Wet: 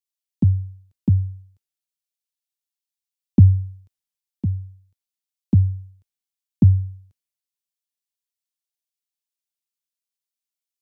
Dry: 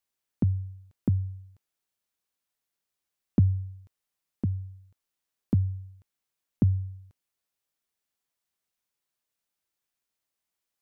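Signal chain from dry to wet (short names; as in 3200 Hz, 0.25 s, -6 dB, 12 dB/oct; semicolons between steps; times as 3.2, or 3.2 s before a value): low shelf 370 Hz +6.5 dB; three-band expander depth 70%; gain -1 dB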